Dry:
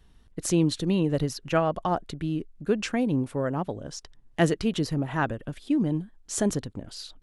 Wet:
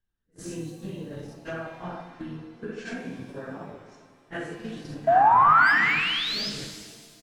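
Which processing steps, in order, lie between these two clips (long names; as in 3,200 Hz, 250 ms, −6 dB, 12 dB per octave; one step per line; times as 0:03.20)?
random phases in long frames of 200 ms
downward compressor 12 to 1, threshold −31 dBFS, peak gain reduction 15 dB
pitch-shifted copies added −5 semitones −11 dB
sound drawn into the spectrogram rise, 0:05.07–0:06.50, 650–5,300 Hz −16 dBFS
parametric band 1,600 Hz +12 dB 0.25 octaves
noise gate −34 dBFS, range −24 dB
high-shelf EQ 8,200 Hz −4 dB
de-essing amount 85%
reverb with rising layers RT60 1.7 s, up +7 semitones, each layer −8 dB, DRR 6 dB
level −2 dB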